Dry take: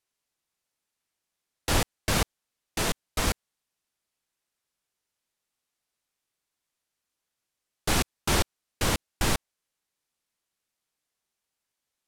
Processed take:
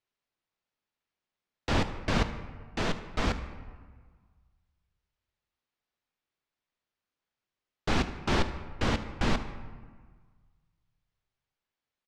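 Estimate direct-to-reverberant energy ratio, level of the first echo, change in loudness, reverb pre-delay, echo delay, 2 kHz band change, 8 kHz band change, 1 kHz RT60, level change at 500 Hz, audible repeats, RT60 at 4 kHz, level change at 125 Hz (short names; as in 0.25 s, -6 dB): 9.0 dB, -18.5 dB, -3.0 dB, 5 ms, 75 ms, -2.5 dB, -15.0 dB, 1.6 s, -1.0 dB, 1, 0.95 s, -1.0 dB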